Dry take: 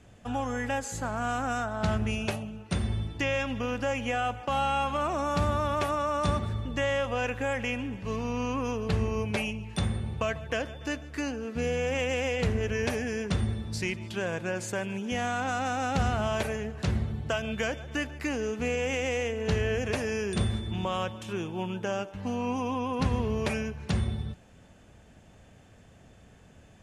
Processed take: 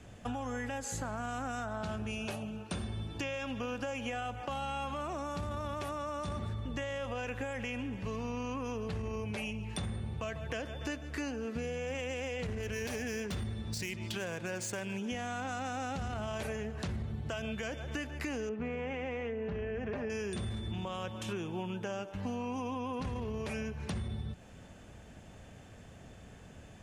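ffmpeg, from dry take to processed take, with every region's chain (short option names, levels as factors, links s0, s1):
-filter_complex "[0:a]asettb=1/sr,asplit=3[s0][s1][s2];[s0]atrim=end=1.824[s3];[s1]atrim=start=1.82:end=4.1,asetpts=PTS-STARTPTS,afade=t=in:d=0.004:c=qsin,afade=t=out:st=2.276:d=0.004:c=qsin,lowshelf=f=130:g=-7,bandreject=f=2000:w=8.5[s4];[s2]atrim=start=4.096[s5];[s3][s4]acrossfade=d=0.004:c1=hsin:c2=qsin[s6];[s6][s5]acrossfade=d=0.004:c1=qsin:c2=hsin,asettb=1/sr,asplit=3[s7][s8][s9];[s7]atrim=end=12.524[s10];[s8]atrim=start=12.52:end=15.01,asetpts=PTS-STARTPTS,afade=t=in:d=0.004:c=qsin,afade=t=out:st=2.486:d=0.004:c=qsin,adynamicsmooth=sensitivity=6.5:basefreq=4600,aemphasis=mode=production:type=75fm[s11];[s9]atrim=start=15.006[s12];[s10][s11]acrossfade=d=0.004:c1=hsin:c2=qsin[s13];[s13][s12]acrossfade=d=0.004:c1=qsin:c2=hsin,asettb=1/sr,asplit=3[s14][s15][s16];[s14]atrim=end=18.494[s17];[s15]atrim=start=18.49:end=20.1,asetpts=PTS-STARTPTS,afade=t=in:d=0.004:c=qsin,afade=t=out:st=1.606:d=0.004:c=qsin,lowpass=1800,aecho=1:1:5:0.4,atrim=end_sample=71001[s18];[s16]atrim=start=20.096[s19];[s17][s18]acrossfade=d=0.004:c1=hsin:c2=qsin[s20];[s20][s19]acrossfade=d=0.004:c1=qsin:c2=hsin,acrossover=split=460|3000[s21][s22][s23];[s22]acompressor=threshold=0.0316:ratio=6[s24];[s21][s24][s23]amix=inputs=3:normalize=0,alimiter=limit=0.0668:level=0:latency=1:release=11,acompressor=threshold=0.0141:ratio=6,volume=1.33"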